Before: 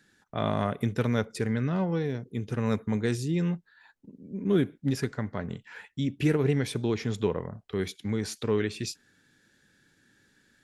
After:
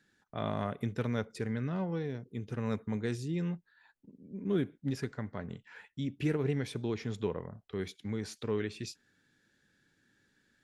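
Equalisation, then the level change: treble shelf 9.3 kHz -8 dB; -6.5 dB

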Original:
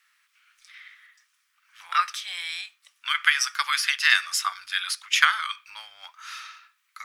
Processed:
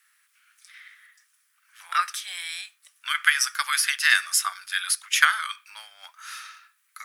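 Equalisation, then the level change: treble shelf 6.3 kHz +10.5 dB; dynamic bell 300 Hz, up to +5 dB, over -47 dBFS, Q 1.4; fifteen-band graphic EQ 630 Hz +5 dB, 1.6 kHz +6 dB, 10 kHz +7 dB; -5.0 dB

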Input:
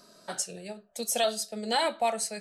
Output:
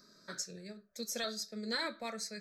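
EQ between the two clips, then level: static phaser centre 2.9 kHz, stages 6; -3.5 dB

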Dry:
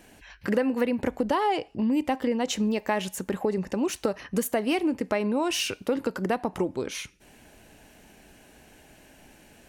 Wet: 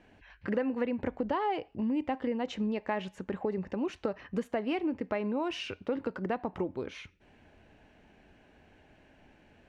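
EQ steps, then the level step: low-pass 2.8 kHz 12 dB/octave; peaking EQ 88 Hz +7 dB 0.31 oct; -6.0 dB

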